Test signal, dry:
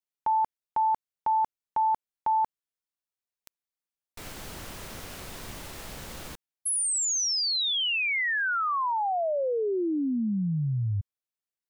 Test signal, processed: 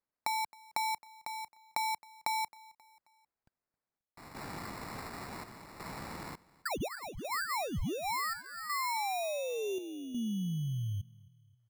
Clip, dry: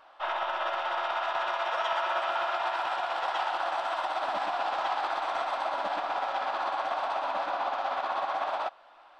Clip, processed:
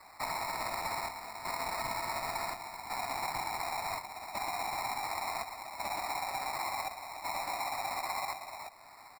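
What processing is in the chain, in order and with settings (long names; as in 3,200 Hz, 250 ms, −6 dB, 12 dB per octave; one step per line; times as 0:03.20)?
Bessel high-pass filter 170 Hz, order 2
high-shelf EQ 4,700 Hz −6 dB
notch filter 1,600 Hz, Q 26
comb filter 1 ms, depth 56%
dynamic equaliser 1,500 Hz, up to −5 dB, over −44 dBFS, Q 2
downward compressor 6 to 1, threshold −33 dBFS
decimation without filtering 14×
square-wave tremolo 0.69 Hz, depth 60%, duty 75%
on a send: repeating echo 267 ms, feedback 47%, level −23 dB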